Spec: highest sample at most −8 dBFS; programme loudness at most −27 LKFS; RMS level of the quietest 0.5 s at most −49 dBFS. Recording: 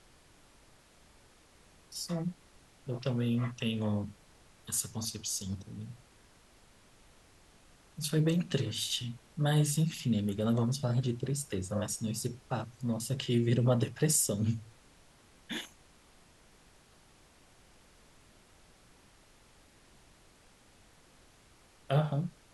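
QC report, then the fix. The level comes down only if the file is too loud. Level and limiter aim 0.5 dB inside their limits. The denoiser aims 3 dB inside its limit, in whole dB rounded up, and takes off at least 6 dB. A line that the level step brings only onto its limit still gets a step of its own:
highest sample −12.5 dBFS: in spec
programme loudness −32.5 LKFS: in spec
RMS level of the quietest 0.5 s −61 dBFS: in spec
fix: no processing needed

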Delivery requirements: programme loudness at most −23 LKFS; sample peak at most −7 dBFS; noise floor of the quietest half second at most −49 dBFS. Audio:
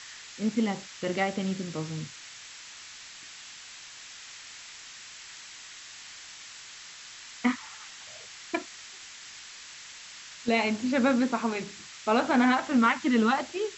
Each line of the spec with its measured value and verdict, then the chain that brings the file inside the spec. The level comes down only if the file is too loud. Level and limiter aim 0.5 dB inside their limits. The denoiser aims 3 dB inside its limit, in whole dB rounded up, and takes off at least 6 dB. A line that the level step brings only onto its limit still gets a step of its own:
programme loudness −27.5 LKFS: in spec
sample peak −10.5 dBFS: in spec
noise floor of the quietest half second −46 dBFS: out of spec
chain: broadband denoise 6 dB, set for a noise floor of −46 dBFS

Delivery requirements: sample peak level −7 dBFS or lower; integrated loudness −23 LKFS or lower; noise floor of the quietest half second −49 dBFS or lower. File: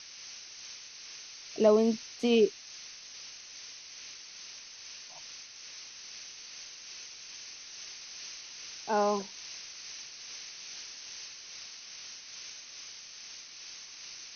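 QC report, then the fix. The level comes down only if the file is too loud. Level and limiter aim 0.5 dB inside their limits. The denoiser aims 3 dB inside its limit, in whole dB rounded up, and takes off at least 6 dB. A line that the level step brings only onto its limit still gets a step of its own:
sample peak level −12.0 dBFS: in spec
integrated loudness −36.0 LKFS: in spec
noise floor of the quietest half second −48 dBFS: out of spec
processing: broadband denoise 6 dB, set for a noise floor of −48 dBFS

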